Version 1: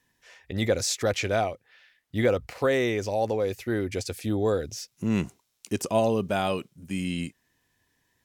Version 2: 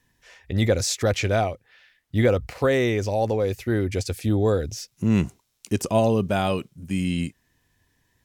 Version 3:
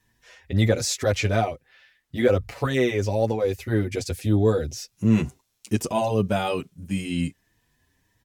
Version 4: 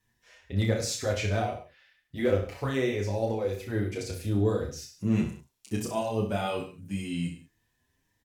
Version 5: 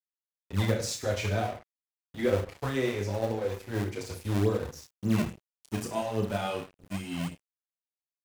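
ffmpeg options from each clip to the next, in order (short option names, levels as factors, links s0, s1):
-af "lowshelf=f=130:g=10.5,volume=1.26"
-filter_complex "[0:a]asplit=2[s0][s1];[s1]adelay=6.9,afreqshift=1.6[s2];[s0][s2]amix=inputs=2:normalize=1,volume=1.33"
-af "volume=3.16,asoftclip=hard,volume=0.316,aecho=1:1:30|63|99.3|139.2|183.2:0.631|0.398|0.251|0.158|0.1,volume=0.398"
-filter_complex "[0:a]acrossover=split=250|470|4400[s0][s1][s2][s3];[s0]acrusher=samples=30:mix=1:aa=0.000001:lfo=1:lforange=48:lforate=3.5[s4];[s4][s1][s2][s3]amix=inputs=4:normalize=0,aeval=exprs='sgn(val(0))*max(abs(val(0))-0.00668,0)':c=same"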